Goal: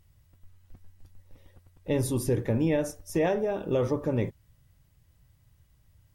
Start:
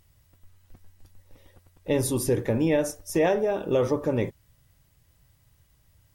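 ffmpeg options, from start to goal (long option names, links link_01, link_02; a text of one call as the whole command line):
ffmpeg -i in.wav -af "bass=frequency=250:gain=5,treble=frequency=4000:gain=-2,volume=-4dB" out.wav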